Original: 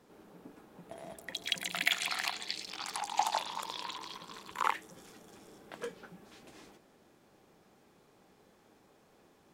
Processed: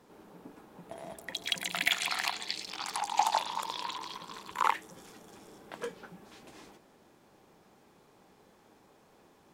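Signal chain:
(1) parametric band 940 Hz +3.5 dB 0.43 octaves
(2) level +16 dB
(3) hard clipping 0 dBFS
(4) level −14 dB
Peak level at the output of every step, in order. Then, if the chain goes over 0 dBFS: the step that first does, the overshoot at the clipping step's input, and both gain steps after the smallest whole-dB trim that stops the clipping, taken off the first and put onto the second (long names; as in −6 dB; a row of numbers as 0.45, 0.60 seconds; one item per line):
−8.5, +7.5, 0.0, −14.0 dBFS
step 2, 7.5 dB
step 2 +8 dB, step 4 −6 dB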